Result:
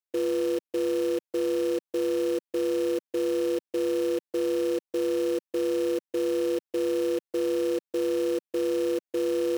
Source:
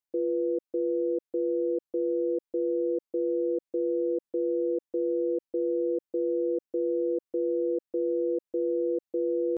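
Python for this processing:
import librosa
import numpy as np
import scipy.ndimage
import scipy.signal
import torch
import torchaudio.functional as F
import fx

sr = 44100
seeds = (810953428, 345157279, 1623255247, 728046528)

p1 = scipy.signal.sosfilt(scipy.signal.butter(4, 180.0, 'highpass', fs=sr, output='sos'), x)
p2 = fx.quant_companded(p1, sr, bits=4)
p3 = p1 + (p2 * librosa.db_to_amplitude(3.0))
y = p3 * librosa.db_to_amplitude(-6.0)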